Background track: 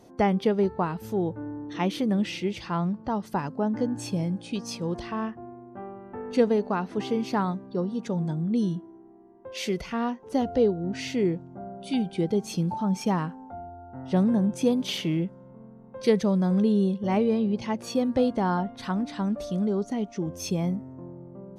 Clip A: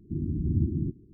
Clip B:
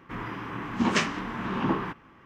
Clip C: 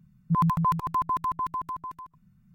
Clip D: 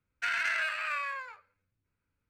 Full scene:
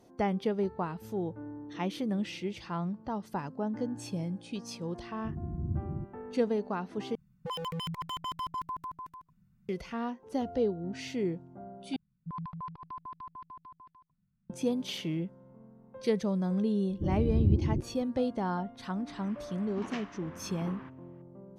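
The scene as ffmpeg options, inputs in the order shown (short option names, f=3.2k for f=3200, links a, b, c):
-filter_complex "[1:a]asplit=2[a][b];[3:a]asplit=2[c][d];[0:a]volume=-7dB[e];[a]equalizer=f=270:w=5.2:g=-12[f];[c]aeval=exprs='0.0562*(abs(mod(val(0)/0.0562+3,4)-2)-1)':c=same[g];[d]aresample=11025,aresample=44100[h];[b]aecho=1:1:2.3:0.61[i];[2:a]lowpass=4.7k[j];[e]asplit=3[k][l][m];[k]atrim=end=7.154[n];[g]atrim=end=2.54,asetpts=PTS-STARTPTS,volume=-6dB[o];[l]atrim=start=9.686:end=11.964[p];[h]atrim=end=2.54,asetpts=PTS-STARTPTS,volume=-16.5dB[q];[m]atrim=start=14.496[r];[f]atrim=end=1.13,asetpts=PTS-STARTPTS,volume=-7dB,afade=t=in:d=0.004:c=hsin,afade=t=out:st=1.126:d=0.004:c=hsin,adelay=5140[s];[i]atrim=end=1.13,asetpts=PTS-STARTPTS,volume=-0.5dB,afade=t=in:d=0.004:c=hsin,afade=t=out:st=1.126:d=0.004:c=hsin,adelay=16900[t];[j]atrim=end=2.25,asetpts=PTS-STARTPTS,volume=-16.5dB,afade=t=in:d=0.004:c=hsin,afade=t=out:st=2.246:d=0.004:c=hsin,adelay=18970[u];[n][o]acrossfade=d=0.004:c1=hsin:c2=hsin[v];[v][p]acrossfade=d=0.004:c1=hsin:c2=hsin[w];[w][q]acrossfade=d=0.004:c1=hsin:c2=hsin[x];[x][r]acrossfade=d=0.004:c1=hsin:c2=hsin[y];[y][s][t][u]amix=inputs=4:normalize=0"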